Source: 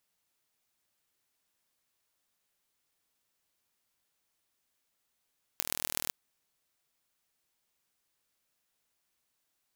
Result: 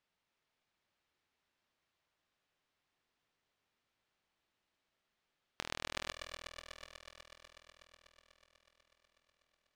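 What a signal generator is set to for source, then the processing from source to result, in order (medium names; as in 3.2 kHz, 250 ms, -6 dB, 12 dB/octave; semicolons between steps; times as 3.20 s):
pulse train 40.1 per s, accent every 5, -1.5 dBFS 0.52 s
low-pass 3.5 kHz 12 dB/octave; on a send: multi-head delay 123 ms, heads all three, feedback 74%, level -13 dB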